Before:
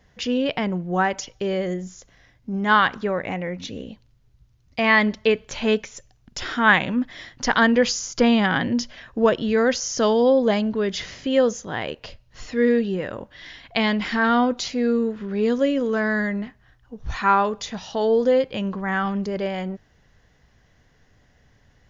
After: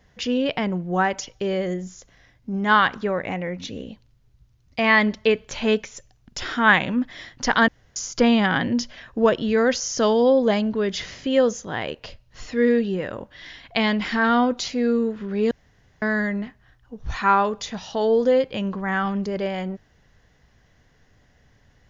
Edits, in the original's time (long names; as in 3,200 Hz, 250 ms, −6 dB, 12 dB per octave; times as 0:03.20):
0:07.68–0:07.96: fill with room tone
0:15.51–0:16.02: fill with room tone